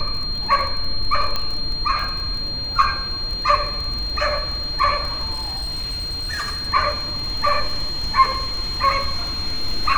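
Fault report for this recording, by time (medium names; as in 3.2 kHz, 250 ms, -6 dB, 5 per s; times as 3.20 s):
crackle 27 per s -25 dBFS
whine 4.2 kHz -25 dBFS
1.36 s: pop -9 dBFS
5.32–6.69 s: clipped -22 dBFS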